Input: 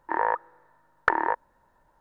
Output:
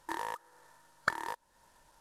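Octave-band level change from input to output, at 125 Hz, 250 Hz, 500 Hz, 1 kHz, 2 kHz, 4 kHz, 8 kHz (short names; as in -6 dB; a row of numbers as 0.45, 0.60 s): -4.0 dB, -10.5 dB, -14.0 dB, -12.0 dB, -8.5 dB, +3.5 dB, n/a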